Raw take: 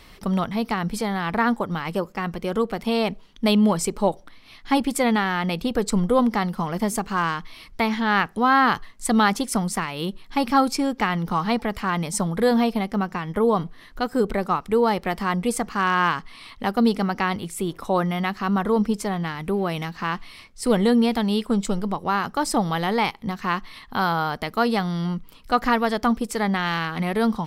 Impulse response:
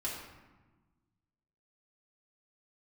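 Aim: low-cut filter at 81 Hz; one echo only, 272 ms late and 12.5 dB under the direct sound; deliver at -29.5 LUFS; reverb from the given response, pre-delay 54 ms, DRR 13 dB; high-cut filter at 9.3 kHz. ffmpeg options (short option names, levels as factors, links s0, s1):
-filter_complex "[0:a]highpass=81,lowpass=9300,aecho=1:1:272:0.237,asplit=2[s0][s1];[1:a]atrim=start_sample=2205,adelay=54[s2];[s1][s2]afir=irnorm=-1:irlink=0,volume=0.168[s3];[s0][s3]amix=inputs=2:normalize=0,volume=0.473"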